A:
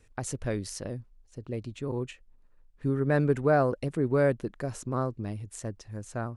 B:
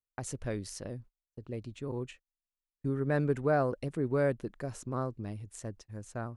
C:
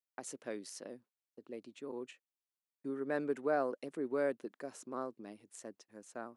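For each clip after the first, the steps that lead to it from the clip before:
noise gate −45 dBFS, range −37 dB; level −4.5 dB
high-pass filter 240 Hz 24 dB per octave; level −4.5 dB

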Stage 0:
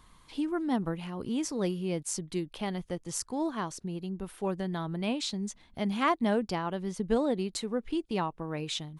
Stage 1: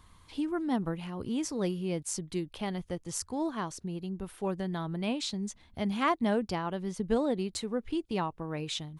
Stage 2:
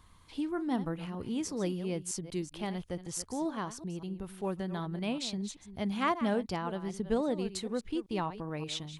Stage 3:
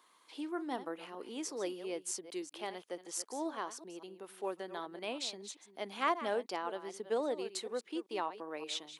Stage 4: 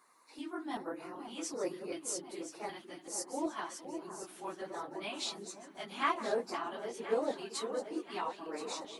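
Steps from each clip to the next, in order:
parametric band 85 Hz +10.5 dB 0.53 octaves; level −1 dB
delay that plays each chunk backwards 192 ms, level −12.5 dB; level −2 dB
high-pass filter 340 Hz 24 dB per octave; level −1.5 dB
random phases in long frames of 50 ms; auto-filter notch square 1.3 Hz 480–3,200 Hz; delay that swaps between a low-pass and a high-pass 513 ms, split 1,400 Hz, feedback 69%, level −9 dB; level +1 dB

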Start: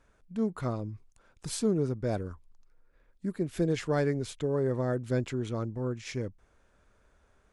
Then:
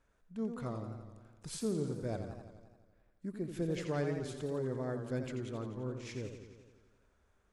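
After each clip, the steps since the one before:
feedback echo with a swinging delay time 86 ms, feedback 67%, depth 118 cents, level −8 dB
level −8 dB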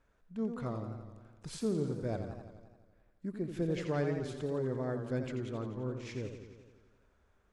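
high-shelf EQ 7,800 Hz −11.5 dB
level +2 dB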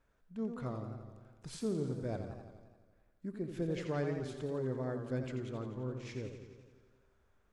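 tuned comb filter 130 Hz, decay 1.5 s, mix 60%
level +5 dB

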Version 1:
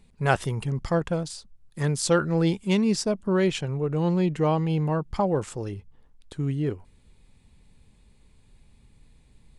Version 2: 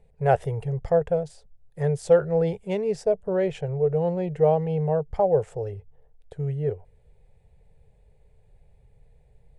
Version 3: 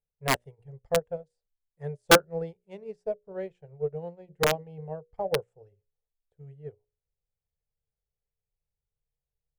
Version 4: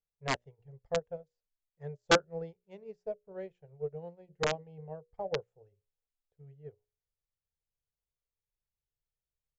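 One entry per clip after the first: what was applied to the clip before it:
drawn EQ curve 150 Hz 0 dB, 280 Hz −22 dB, 440 Hz +7 dB, 750 Hz +5 dB, 1,100 Hz −12 dB, 1,800 Hz −5 dB, 4,300 Hz −16 dB, 8,200 Hz −13 dB
wrap-around overflow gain 10 dB; mains-hum notches 60/120/180/240/300/360/420/480/540/600 Hz; expander for the loud parts 2.5 to 1, over −36 dBFS; level +1.5 dB
downsampling to 16,000 Hz; level −6.5 dB

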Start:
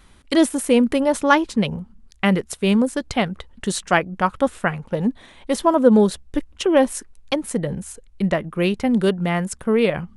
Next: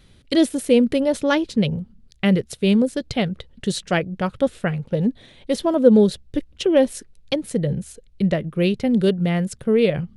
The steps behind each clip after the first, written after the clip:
octave-band graphic EQ 125/500/1,000/4,000/8,000 Hz +11/+6/−9/+6/−3 dB
level −3.5 dB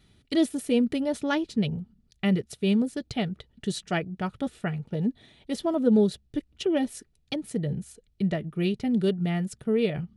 notch comb filter 530 Hz
level −6 dB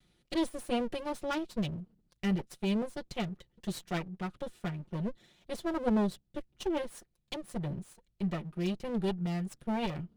lower of the sound and its delayed copy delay 5.6 ms
level −6.5 dB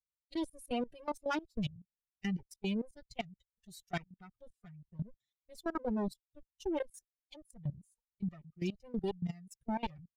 spectral dynamics exaggerated over time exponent 2
output level in coarse steps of 19 dB
downsampling to 32,000 Hz
level +5 dB

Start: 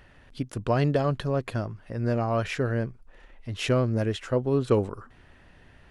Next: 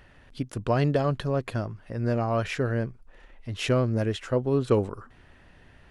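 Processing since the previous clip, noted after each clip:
no processing that can be heard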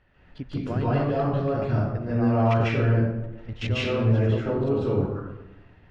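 output level in coarse steps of 16 dB
high-frequency loss of the air 160 metres
convolution reverb RT60 0.95 s, pre-delay 138 ms, DRR −8.5 dB
level +1 dB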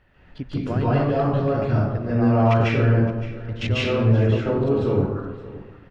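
single-tap delay 567 ms −17 dB
level +3.5 dB

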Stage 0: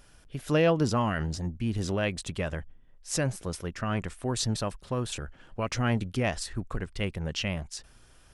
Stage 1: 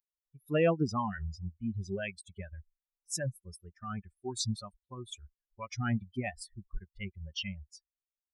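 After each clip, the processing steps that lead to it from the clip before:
spectral dynamics exaggerated over time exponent 3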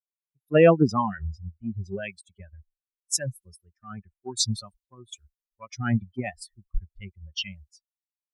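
multiband upward and downward expander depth 100%
level +2 dB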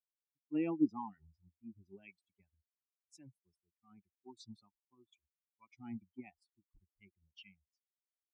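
formant filter u
level −6 dB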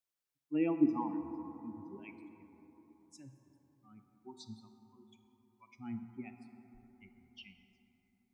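dense smooth reverb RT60 4.1 s, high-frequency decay 0.3×, DRR 7 dB
level +3.5 dB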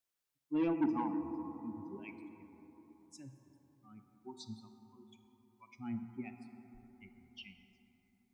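soft clipping −28.5 dBFS, distortion −9 dB
level +2 dB

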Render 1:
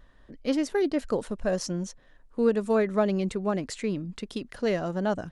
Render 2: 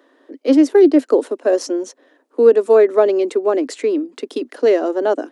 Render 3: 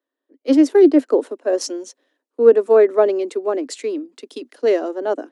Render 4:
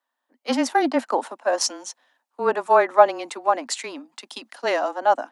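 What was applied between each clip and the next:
Butterworth high-pass 260 Hz 72 dB per octave; parametric band 340 Hz +11 dB 1.9 octaves; level +5 dB
multiband upward and downward expander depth 70%; level −2.5 dB
low shelf with overshoot 600 Hz −11.5 dB, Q 3; frequency shifter −21 Hz; level +4.5 dB

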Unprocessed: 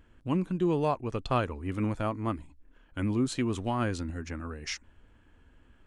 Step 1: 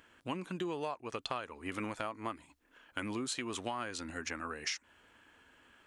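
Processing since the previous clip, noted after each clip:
high-pass filter 1,100 Hz 6 dB per octave
downward compressor 10 to 1, threshold −42 dBFS, peak gain reduction 16 dB
level +8 dB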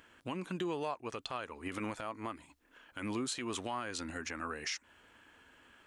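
brickwall limiter −28 dBFS, peak gain reduction 8.5 dB
level +1.5 dB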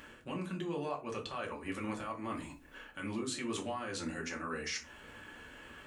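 reversed playback
downward compressor 6 to 1, threshold −46 dBFS, peak gain reduction 13 dB
reversed playback
convolution reverb, pre-delay 4 ms, DRR −1 dB
level +6 dB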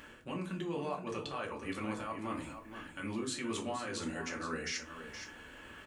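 single-tap delay 471 ms −9.5 dB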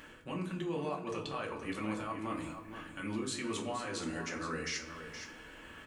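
rectangular room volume 1,700 cubic metres, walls mixed, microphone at 0.6 metres

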